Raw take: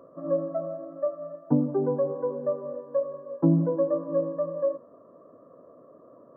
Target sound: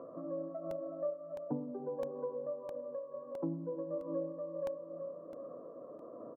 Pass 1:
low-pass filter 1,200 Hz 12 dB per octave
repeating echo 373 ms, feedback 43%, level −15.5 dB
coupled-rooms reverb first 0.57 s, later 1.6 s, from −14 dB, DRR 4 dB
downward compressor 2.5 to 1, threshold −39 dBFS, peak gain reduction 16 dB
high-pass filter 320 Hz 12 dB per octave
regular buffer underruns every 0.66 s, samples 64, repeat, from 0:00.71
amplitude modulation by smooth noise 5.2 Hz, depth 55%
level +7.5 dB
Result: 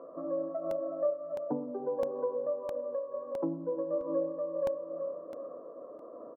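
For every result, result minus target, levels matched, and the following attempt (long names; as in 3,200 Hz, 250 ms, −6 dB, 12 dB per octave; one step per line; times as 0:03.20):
125 Hz band −9.0 dB; downward compressor: peak gain reduction −7 dB
low-pass filter 1,200 Hz 12 dB per octave
repeating echo 373 ms, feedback 43%, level −15.5 dB
coupled-rooms reverb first 0.57 s, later 1.6 s, from −14 dB, DRR 4 dB
downward compressor 2.5 to 1, threshold −39 dBFS, peak gain reduction 16 dB
high-pass filter 150 Hz 12 dB per octave
regular buffer underruns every 0.66 s, samples 64, repeat, from 0:00.71
amplitude modulation by smooth noise 5.2 Hz, depth 55%
level +7.5 dB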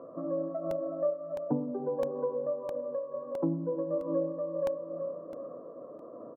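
downward compressor: peak gain reduction −7 dB
low-pass filter 1,200 Hz 12 dB per octave
repeating echo 373 ms, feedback 43%, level −15.5 dB
coupled-rooms reverb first 0.57 s, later 1.6 s, from −14 dB, DRR 4 dB
downward compressor 2.5 to 1, threshold −51 dBFS, peak gain reduction 23.5 dB
high-pass filter 150 Hz 12 dB per octave
regular buffer underruns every 0.66 s, samples 64, repeat, from 0:00.71
amplitude modulation by smooth noise 5.2 Hz, depth 55%
level +7.5 dB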